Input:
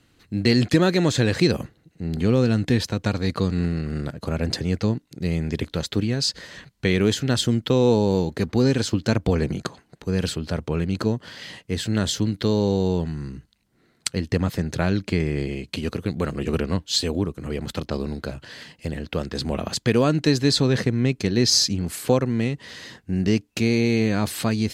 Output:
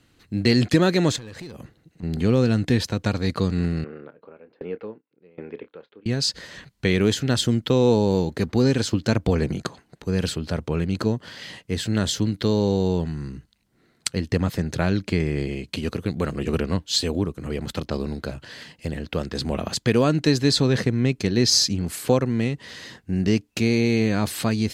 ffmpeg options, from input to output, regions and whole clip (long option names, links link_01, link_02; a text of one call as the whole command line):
ffmpeg -i in.wav -filter_complex "[0:a]asettb=1/sr,asplit=3[link_01][link_02][link_03];[link_01]atrim=end=1.164[link_04];[link_02]atrim=start=1.16:end=2.03,asetpts=PTS-STARTPTS,afade=type=in:duration=0.004:curve=qsin,afade=type=out:start_time=0.866:duration=0.004:curve=qsin,acompressor=threshold=-35dB:ratio=5:attack=3.2:release=140:knee=1:detection=peak,asoftclip=type=hard:threshold=-31.5dB[link_05];[link_03]atrim=start=2.026[link_06];[link_04][link_05]acrossfade=duration=0.004:curve1=hsin:curve2=qsin[link_07];[link_07][link_06]acrossfade=duration=0.004:curve1=qsin:curve2=hsin,asettb=1/sr,asplit=3[link_08][link_09][link_10];[link_08]atrim=end=3.844[link_11];[link_09]atrim=start=3.84:end=6.06,asetpts=PTS-STARTPTS,afade=type=in:duration=0.004:curve=qsin,afade=type=out:start_time=2.216:duration=0.004:curve=qsin,highpass=370,equalizer=frequency=460:width_type=q:width=4:gain=7,equalizer=frequency=680:width_type=q:width=4:gain=-5,equalizer=frequency=1900:width_type=q:width=4:gain=-7,lowpass=frequency=2400:width=0.5412,lowpass=frequency=2400:width=1.3066,asplit=2[link_12][link_13];[link_13]adelay=28,volume=-13.5dB[link_14];[link_12][link_14]amix=inputs=2:normalize=0,atrim=end_sample=97902,aeval=exprs='val(0)*pow(10,-26*if(lt(mod(1.3*n/s,1),2*abs(1.3)/1000),1-mod(1.3*n/s,1)/(2*abs(1.3)/1000),(mod(1.3*n/s,1)-2*abs(1.3)/1000)/(1-2*abs(1.3)/1000))/20)':channel_layout=same[link_15];[link_10]atrim=start=6.056[link_16];[link_11][link_15]acrossfade=duration=0.004:curve1=hsin:curve2=qsin[link_17];[link_17][link_16]acrossfade=duration=0.004:curve1=qsin:curve2=hsin" out.wav